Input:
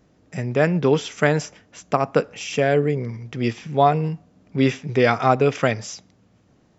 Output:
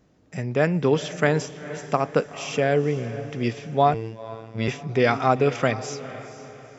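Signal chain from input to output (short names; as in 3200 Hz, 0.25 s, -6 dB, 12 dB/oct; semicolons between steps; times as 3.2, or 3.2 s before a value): diffused feedback echo 0.464 s, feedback 43%, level -14 dB; 3.94–4.68 robotiser 112 Hz; gain -2.5 dB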